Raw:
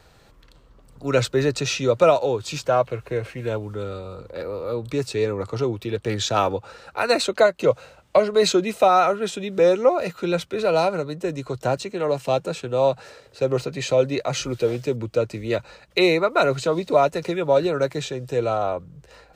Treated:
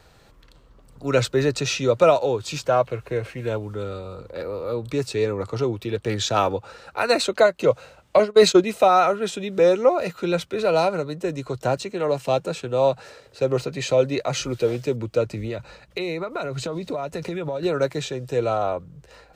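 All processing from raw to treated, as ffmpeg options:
ffmpeg -i in.wav -filter_complex "[0:a]asettb=1/sr,asplit=3[link_01][link_02][link_03];[link_01]atrim=end=8.194[link_04];[link_02]atrim=start=8.19:end=8.64,asetpts=PTS-STARTPTS,afade=type=in:duration=0.004:curve=qsin,afade=type=out:start_time=0.446:duration=0.004:curve=qsin,agate=range=-33dB:threshold=-17dB:ratio=3:release=100:detection=peak,acontrast=40[link_05];[link_03]atrim=start=8.636[link_06];[link_04][link_05]acrossfade=duration=0.004:curve1=hsin:curve2=qsin[link_07];[link_07][link_06]acrossfade=duration=0.004:curve1=qsin:curve2=hsin,asettb=1/sr,asplit=3[link_08][link_09][link_10];[link_08]atrim=end=15.264[link_11];[link_09]atrim=start=15.26:end=17.63,asetpts=PTS-STARTPTS,afade=type=in:duration=0.004:curve=qsin,afade=type=out:start_time=2.366:duration=0.004:curve=qsin,bass=frequency=250:gain=5,treble=frequency=4000:gain=-1,acompressor=threshold=-24dB:ratio=10:attack=3.2:release=140:knee=1:detection=peak[link_12];[link_10]atrim=start=17.626[link_13];[link_11][link_12]acrossfade=duration=0.004:curve1=hsin:curve2=qsin[link_14];[link_14][link_13]acrossfade=duration=0.004:curve1=qsin:curve2=hsin" out.wav

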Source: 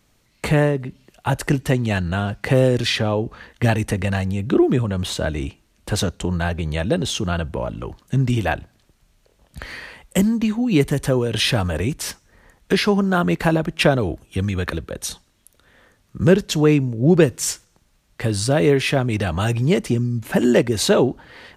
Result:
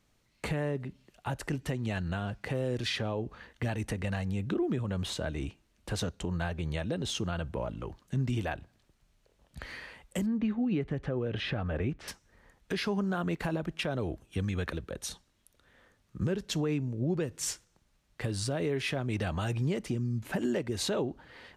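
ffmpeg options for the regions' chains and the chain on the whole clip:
ffmpeg -i in.wav -filter_complex "[0:a]asettb=1/sr,asplit=3[link_01][link_02][link_03];[link_01]atrim=end=10.264[link_04];[link_02]atrim=start=10.26:end=12.08,asetpts=PTS-STARTPTS,afade=type=in:duration=0.004:curve=qsin,afade=type=out:start_time=1.816:duration=0.004:curve=qsin,lowpass=2300,bandreject=frequency=970:width=8[link_05];[link_03]atrim=start=12.076[link_06];[link_04][link_05]acrossfade=duration=0.004:curve1=hsin:curve2=qsin[link_07];[link_07][link_06]acrossfade=duration=0.004:curve1=qsin:curve2=hsin,highshelf=frequency=10000:gain=-6,alimiter=limit=-13dB:level=0:latency=1:release=177,volume=-9dB" out.wav

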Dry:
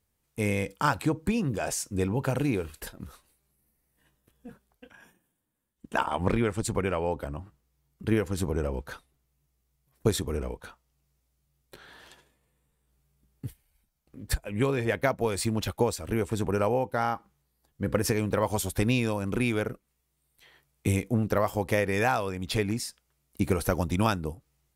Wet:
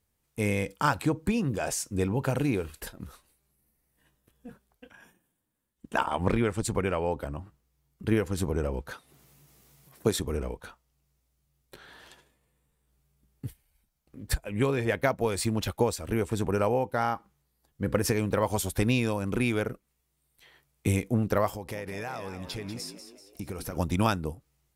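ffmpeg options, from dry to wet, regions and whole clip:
ffmpeg -i in.wav -filter_complex "[0:a]asettb=1/sr,asplit=3[link_01][link_02][link_03];[link_01]atrim=end=8.914[link_04];[link_02]atrim=start=8.91:end=10.2,asetpts=PTS-STARTPTS,afade=type=in:duration=0.004:curve=qsin,afade=type=out:start_time=1.286:duration=0.004:curve=qsin,highpass=130,acompressor=mode=upward:threshold=-41dB:ratio=2.5:attack=3.2:release=140:knee=2.83:detection=peak[link_05];[link_03]atrim=start=10.196[link_06];[link_04][link_05]acrossfade=duration=0.004:curve1=hsin:curve2=qsin[link_07];[link_07][link_06]acrossfade=duration=0.004:curve1=qsin:curve2=hsin,asettb=1/sr,asplit=3[link_08][link_09][link_10];[link_08]atrim=end=21.534[link_11];[link_09]atrim=start=21.53:end=23.77,asetpts=PTS-STARTPTS,afade=type=in:duration=0.004:curve=qsin,afade=type=out:start_time=2.236:duration=0.004:curve=qsin,equalizer=frequency=5200:width=7.5:gain=6.5,acompressor=threshold=-36dB:ratio=3:attack=3.2:release=140:knee=1:detection=peak,asplit=6[link_12][link_13][link_14][link_15][link_16][link_17];[link_13]adelay=192,afreqshift=65,volume=-10dB[link_18];[link_14]adelay=384,afreqshift=130,volume=-16.4dB[link_19];[link_15]adelay=576,afreqshift=195,volume=-22.8dB[link_20];[link_16]adelay=768,afreqshift=260,volume=-29.1dB[link_21];[link_17]adelay=960,afreqshift=325,volume=-35.5dB[link_22];[link_12][link_18][link_19][link_20][link_21][link_22]amix=inputs=6:normalize=0,atrim=end_sample=98784[link_23];[link_10]atrim=start=23.766[link_24];[link_11][link_23]acrossfade=duration=0.004:curve1=hsin:curve2=qsin[link_25];[link_25][link_24]acrossfade=duration=0.004:curve1=qsin:curve2=hsin" out.wav

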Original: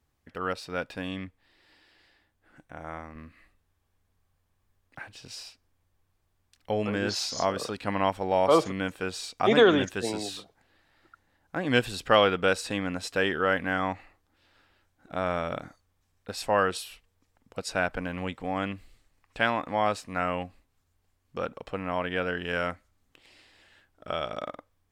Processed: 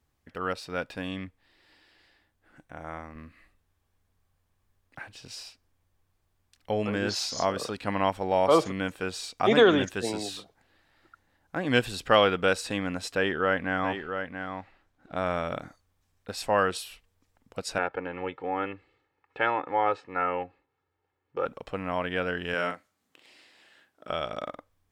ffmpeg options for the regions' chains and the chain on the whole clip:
ffmpeg -i in.wav -filter_complex "[0:a]asettb=1/sr,asplit=3[link_01][link_02][link_03];[link_01]atrim=end=13.154[link_04];[link_02]atrim=start=13.15:end=15.16,asetpts=PTS-STARTPTS,afade=type=in:duration=0.004:curve=qsin,afade=type=out:start_time=2.006:duration=0.004:curve=qsin,lowpass=frequency=3600:poles=1,aecho=1:1:682:0.422,atrim=end_sample=88641[link_05];[link_03]atrim=start=15.156[link_06];[link_04][link_05]acrossfade=duration=0.004:curve1=hsin:curve2=qsin[link_07];[link_07][link_06]acrossfade=duration=0.004:curve1=qsin:curve2=hsin,asettb=1/sr,asplit=3[link_08][link_09][link_10];[link_08]atrim=end=17.784[link_11];[link_09]atrim=start=17.78:end=21.46,asetpts=PTS-STARTPTS,afade=type=in:duration=0.004:curve=qsin,afade=type=out:start_time=3.676:duration=0.004:curve=qsin,highpass=180,lowpass=2100,aecho=1:1:2.3:0.76,atrim=end_sample=162288[link_12];[link_10]atrim=start=21.456[link_13];[link_11][link_12]acrossfade=duration=0.004:curve1=hsin:curve2=qsin[link_14];[link_14][link_13]acrossfade=duration=0.004:curve1=qsin:curve2=hsin,asettb=1/sr,asplit=3[link_15][link_16][link_17];[link_15]atrim=end=22.544[link_18];[link_16]atrim=start=22.54:end=24.1,asetpts=PTS-STARTPTS,afade=type=in:duration=0.004:curve=qsin,afade=type=out:start_time=1.556:duration=0.004:curve=qsin,highpass=200,asplit=2[link_19][link_20];[link_20]adelay=41,volume=-7dB[link_21];[link_19][link_21]amix=inputs=2:normalize=0,atrim=end_sample=68796[link_22];[link_17]atrim=start=24.096[link_23];[link_18][link_22]acrossfade=duration=0.004:curve1=hsin:curve2=qsin[link_24];[link_24][link_23]acrossfade=duration=0.004:curve1=qsin:curve2=hsin" out.wav

